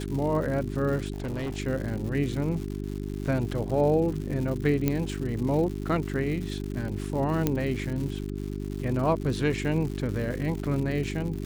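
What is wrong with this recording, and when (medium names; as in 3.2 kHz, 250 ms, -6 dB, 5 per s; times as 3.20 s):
crackle 210 per s -34 dBFS
hum 50 Hz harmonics 8 -33 dBFS
1.12–1.59 s: clipped -28 dBFS
4.88 s: pop -11 dBFS
7.47 s: pop -10 dBFS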